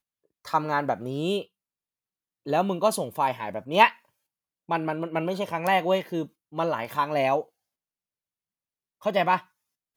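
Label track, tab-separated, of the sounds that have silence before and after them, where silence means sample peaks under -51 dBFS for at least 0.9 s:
2.460000	7.480000	sound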